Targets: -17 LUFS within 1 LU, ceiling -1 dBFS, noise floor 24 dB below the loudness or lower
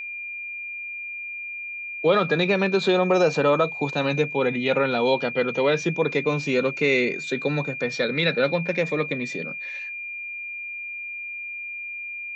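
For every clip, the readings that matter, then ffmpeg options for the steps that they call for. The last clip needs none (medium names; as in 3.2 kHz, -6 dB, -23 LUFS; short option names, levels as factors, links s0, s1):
steady tone 2.4 kHz; tone level -31 dBFS; loudness -24.0 LUFS; peak level -7.0 dBFS; loudness target -17.0 LUFS
-> -af "bandreject=f=2400:w=30"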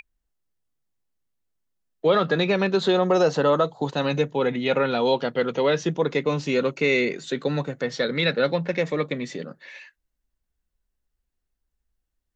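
steady tone not found; loudness -23.0 LUFS; peak level -7.5 dBFS; loudness target -17.0 LUFS
-> -af "volume=2"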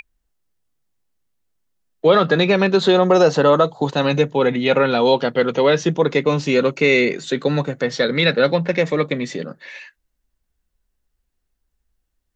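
loudness -17.0 LUFS; peak level -1.5 dBFS; noise floor -74 dBFS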